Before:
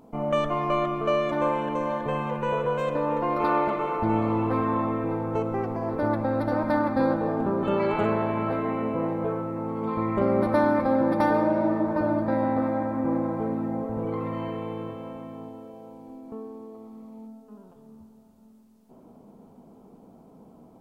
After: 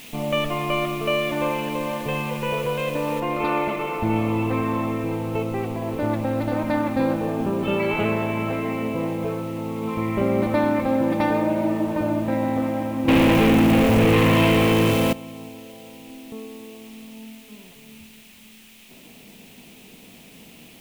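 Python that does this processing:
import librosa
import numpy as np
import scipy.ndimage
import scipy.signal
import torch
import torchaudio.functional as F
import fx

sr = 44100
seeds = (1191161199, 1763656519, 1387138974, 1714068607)

y = fx.noise_floor_step(x, sr, seeds[0], at_s=3.2, before_db=-45, after_db=-52, tilt_db=0.0)
y = fx.leveller(y, sr, passes=5, at=(13.08, 15.13))
y = fx.curve_eq(y, sr, hz=(130.0, 1500.0, 2600.0, 4800.0), db=(0, -6, 9, -4))
y = F.gain(torch.from_numpy(y), 4.0).numpy()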